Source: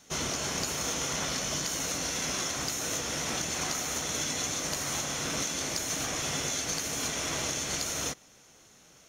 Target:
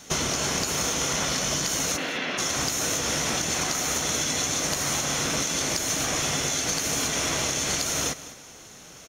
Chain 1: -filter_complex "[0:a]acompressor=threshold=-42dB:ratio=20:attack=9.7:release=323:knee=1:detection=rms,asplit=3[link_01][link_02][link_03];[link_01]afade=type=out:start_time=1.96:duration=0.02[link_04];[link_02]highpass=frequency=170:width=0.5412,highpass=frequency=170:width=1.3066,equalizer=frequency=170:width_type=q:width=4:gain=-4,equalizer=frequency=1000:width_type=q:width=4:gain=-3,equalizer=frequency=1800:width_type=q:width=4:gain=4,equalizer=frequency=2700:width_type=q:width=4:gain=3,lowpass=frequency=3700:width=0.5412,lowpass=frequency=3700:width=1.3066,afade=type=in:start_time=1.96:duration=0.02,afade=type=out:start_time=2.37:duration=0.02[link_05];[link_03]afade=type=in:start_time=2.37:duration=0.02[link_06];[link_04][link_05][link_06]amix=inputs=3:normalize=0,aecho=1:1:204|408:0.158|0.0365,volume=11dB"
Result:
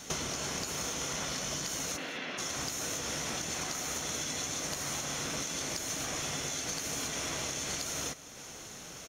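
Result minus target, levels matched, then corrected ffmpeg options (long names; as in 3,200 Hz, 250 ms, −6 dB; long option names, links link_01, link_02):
downward compressor: peak gain reduction +9.5 dB
-filter_complex "[0:a]acompressor=threshold=-32dB:ratio=20:attack=9.7:release=323:knee=1:detection=rms,asplit=3[link_01][link_02][link_03];[link_01]afade=type=out:start_time=1.96:duration=0.02[link_04];[link_02]highpass=frequency=170:width=0.5412,highpass=frequency=170:width=1.3066,equalizer=frequency=170:width_type=q:width=4:gain=-4,equalizer=frequency=1000:width_type=q:width=4:gain=-3,equalizer=frequency=1800:width_type=q:width=4:gain=4,equalizer=frequency=2700:width_type=q:width=4:gain=3,lowpass=frequency=3700:width=0.5412,lowpass=frequency=3700:width=1.3066,afade=type=in:start_time=1.96:duration=0.02,afade=type=out:start_time=2.37:duration=0.02[link_05];[link_03]afade=type=in:start_time=2.37:duration=0.02[link_06];[link_04][link_05][link_06]amix=inputs=3:normalize=0,aecho=1:1:204|408:0.158|0.0365,volume=11dB"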